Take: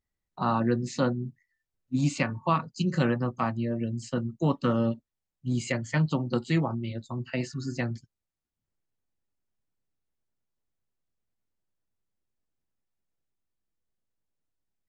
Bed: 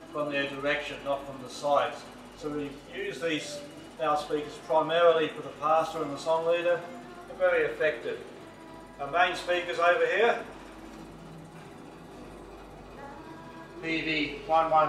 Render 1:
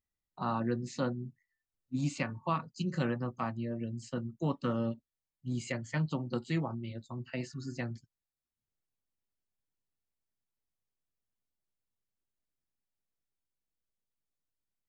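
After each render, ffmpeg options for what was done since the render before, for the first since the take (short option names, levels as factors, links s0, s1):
-af "volume=0.447"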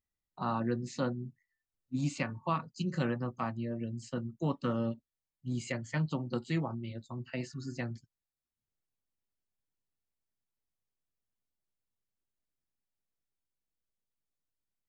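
-af anull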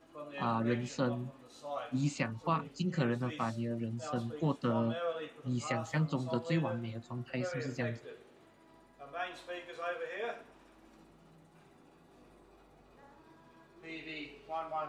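-filter_complex "[1:a]volume=0.178[s0];[0:a][s0]amix=inputs=2:normalize=0"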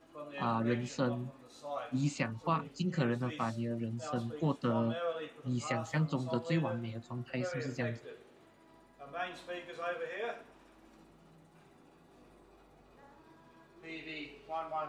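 -filter_complex "[0:a]asettb=1/sr,asplit=3[s0][s1][s2];[s0]atrim=end=1.274[s3];[s1]atrim=start=1.27:end=1.93,asetpts=PTS-STARTPTS,afade=t=in:d=0.004:c=qsin,afade=t=out:st=0.656:d=0.004:c=qsin,bandreject=f=3000:w=12[s4];[s2]atrim=start=1.926[s5];[s3][s4]acrossfade=d=0.004:c1=hsin:c2=qsin[s6];[s6][s5]acrossfade=d=0.004:c1=qsin:c2=hsin,asettb=1/sr,asplit=3[s7][s8][s9];[s7]atrim=end=9.074[s10];[s8]atrim=start=9.07:end=10.13,asetpts=PTS-STARTPTS,afade=t=in:d=0.004:c=qsin,afade=t=out:st=1.056:d=0.004:c=qsin,equalizer=f=190:t=o:w=0.77:g=9.5[s11];[s9]atrim=start=10.126[s12];[s10][s11]acrossfade=d=0.004:c1=hsin:c2=qsin[s13];[s13][s12]acrossfade=d=0.004:c1=qsin:c2=hsin"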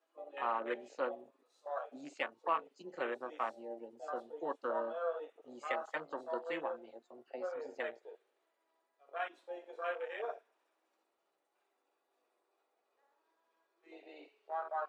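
-af "afwtdn=0.01,highpass=f=420:w=0.5412,highpass=f=420:w=1.3066"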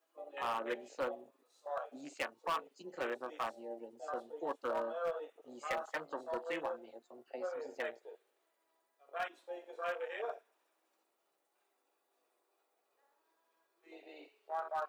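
-af "asoftclip=type=hard:threshold=0.0316,crystalizer=i=1:c=0"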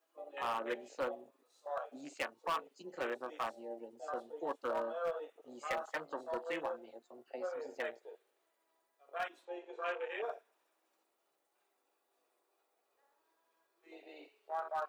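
-filter_complex "[0:a]asettb=1/sr,asplit=3[s0][s1][s2];[s0]atrim=end=9.454[s3];[s1]atrim=start=9.45:end=10.23,asetpts=PTS-STARTPTS,afade=t=in:d=0.004:c=qsin,afade=t=out:st=0.776:d=0.004:c=qsin,highpass=f=160:w=0.5412,highpass=f=160:w=1.3066,equalizer=f=190:t=q:w=4:g=-9,equalizer=f=380:t=q:w=4:g=8,equalizer=f=600:t=q:w=4:g=-4,equalizer=f=940:t=q:w=4:g=4,equalizer=f=2600:t=q:w=4:g=5,equalizer=f=5200:t=q:w=4:g=-6,lowpass=f=7200:w=0.5412,lowpass=f=7200:w=1.3066[s4];[s2]atrim=start=10.226[s5];[s3][s4]acrossfade=d=0.004:c1=hsin:c2=qsin[s6];[s6][s5]acrossfade=d=0.004:c1=qsin:c2=hsin"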